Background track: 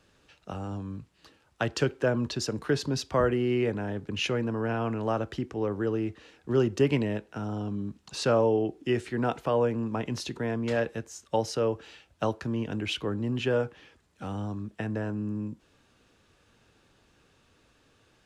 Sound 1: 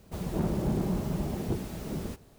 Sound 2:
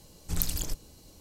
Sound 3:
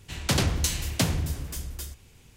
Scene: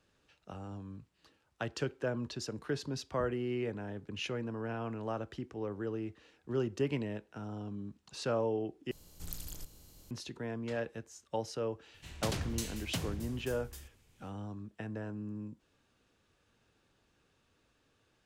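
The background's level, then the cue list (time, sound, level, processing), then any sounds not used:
background track -9 dB
8.91 s: replace with 2 -15.5 dB + spectral levelling over time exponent 0.6
11.94 s: add 3 -12.5 dB
not used: 1

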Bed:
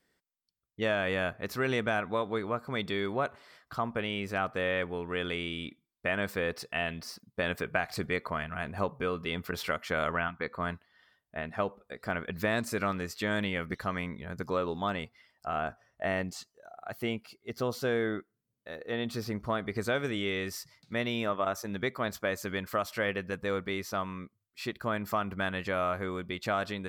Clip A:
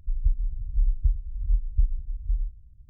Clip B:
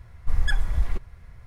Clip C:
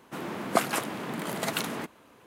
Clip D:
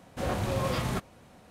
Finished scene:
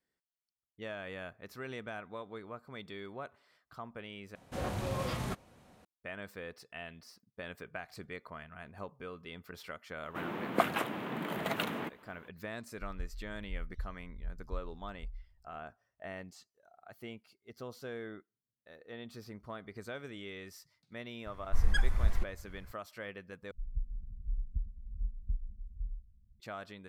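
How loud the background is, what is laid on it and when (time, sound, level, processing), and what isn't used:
bed -13 dB
4.35 s: replace with D -6 dB
10.03 s: add C -3.5 dB + high-order bell 7.3 kHz -12 dB
12.74 s: add A -17.5 dB
21.26 s: add B -5 dB + vibrato 1.8 Hz 63 cents
23.51 s: replace with A -13 dB + small resonant body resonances 210 Hz, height 16 dB, ringing for 100 ms

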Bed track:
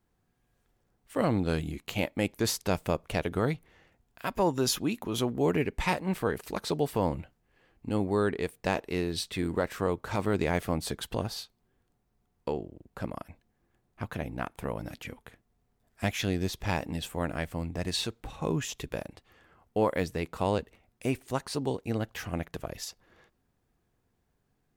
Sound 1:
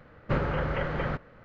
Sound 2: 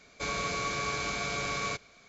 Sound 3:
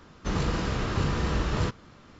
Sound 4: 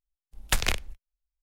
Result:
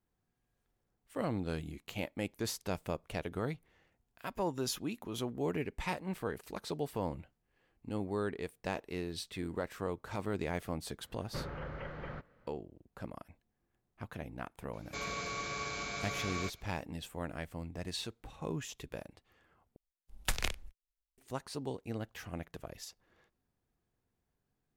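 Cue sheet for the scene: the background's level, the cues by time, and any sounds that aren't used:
bed track -8.5 dB
11.04 s: add 1 -13.5 dB
14.73 s: add 2 -6.5 dB
19.76 s: replace with 4 -8.5 dB
not used: 3

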